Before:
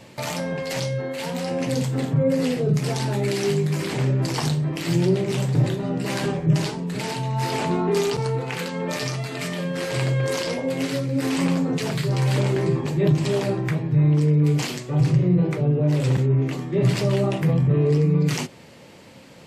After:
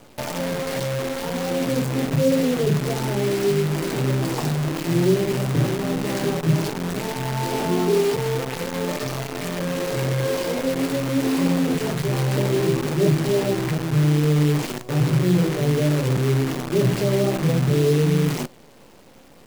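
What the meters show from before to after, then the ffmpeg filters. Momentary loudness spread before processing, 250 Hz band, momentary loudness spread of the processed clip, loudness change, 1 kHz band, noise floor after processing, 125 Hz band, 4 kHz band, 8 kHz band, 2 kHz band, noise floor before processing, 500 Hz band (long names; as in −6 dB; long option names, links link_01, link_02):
8 LU, +1.0 dB, 7 LU, +0.5 dB, +1.5 dB, −48 dBFS, −1.0 dB, +0.5 dB, +2.0 dB, +1.0 dB, −46 dBFS, +2.5 dB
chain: -af "equalizer=frequency=360:width=0.34:gain=11.5,acrusher=bits=4:dc=4:mix=0:aa=0.000001,volume=-8.5dB"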